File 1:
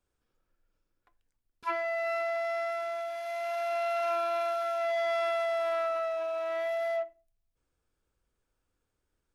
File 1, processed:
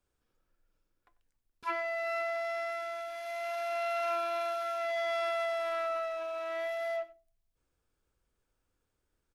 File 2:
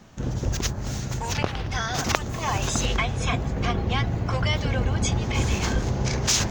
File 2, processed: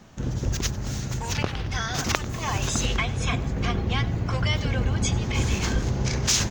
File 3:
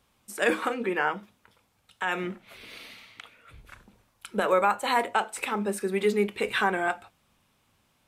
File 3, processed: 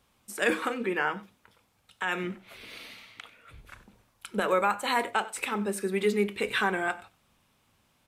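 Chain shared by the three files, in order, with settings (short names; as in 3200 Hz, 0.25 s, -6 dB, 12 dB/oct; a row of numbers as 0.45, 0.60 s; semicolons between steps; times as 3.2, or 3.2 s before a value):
dynamic EQ 720 Hz, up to -4 dB, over -41 dBFS, Q 1; echo 94 ms -19.5 dB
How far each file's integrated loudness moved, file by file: -3.0, -0.5, -1.5 LU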